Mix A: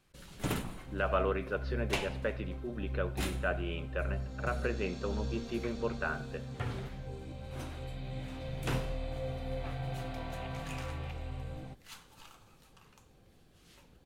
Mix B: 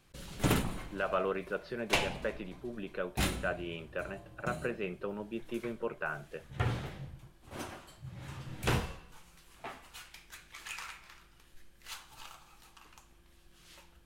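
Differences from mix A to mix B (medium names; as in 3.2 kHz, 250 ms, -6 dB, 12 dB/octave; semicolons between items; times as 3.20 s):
first sound +6.5 dB; second sound: muted; reverb: off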